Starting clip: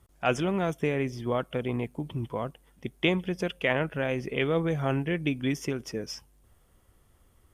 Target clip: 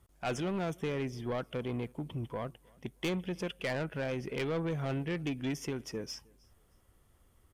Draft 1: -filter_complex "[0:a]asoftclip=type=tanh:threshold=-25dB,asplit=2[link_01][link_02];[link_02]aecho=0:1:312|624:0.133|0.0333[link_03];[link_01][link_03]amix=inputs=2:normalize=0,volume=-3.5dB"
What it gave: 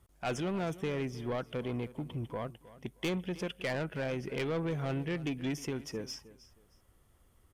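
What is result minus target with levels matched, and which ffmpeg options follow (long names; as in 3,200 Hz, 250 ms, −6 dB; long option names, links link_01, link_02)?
echo-to-direct +9.5 dB
-filter_complex "[0:a]asoftclip=type=tanh:threshold=-25dB,asplit=2[link_01][link_02];[link_02]aecho=0:1:312|624:0.0447|0.0112[link_03];[link_01][link_03]amix=inputs=2:normalize=0,volume=-3.5dB"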